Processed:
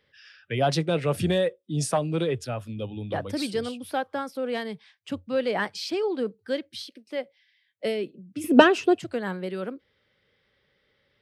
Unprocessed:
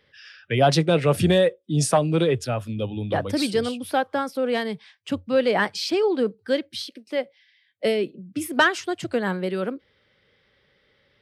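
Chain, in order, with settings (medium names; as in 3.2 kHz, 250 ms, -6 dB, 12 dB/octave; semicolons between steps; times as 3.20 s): 8.44–8.99 s: small resonant body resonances 240/440/2600 Hz, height 18 dB, ringing for 20 ms; trim -5.5 dB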